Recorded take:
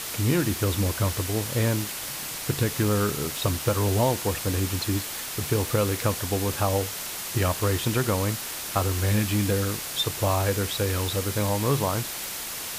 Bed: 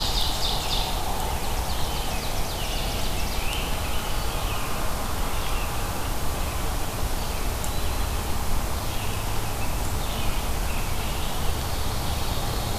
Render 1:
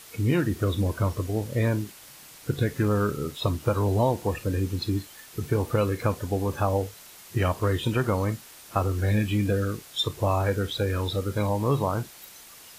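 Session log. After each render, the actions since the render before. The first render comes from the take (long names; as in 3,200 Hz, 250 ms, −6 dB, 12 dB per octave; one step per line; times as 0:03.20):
noise reduction from a noise print 14 dB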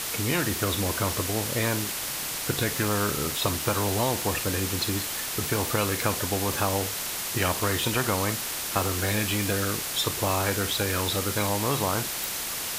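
every bin compressed towards the loudest bin 2 to 1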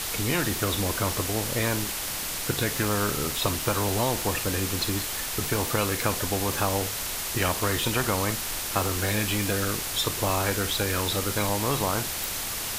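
mix in bed −17.5 dB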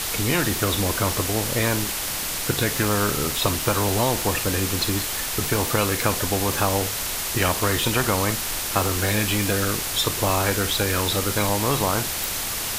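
level +4 dB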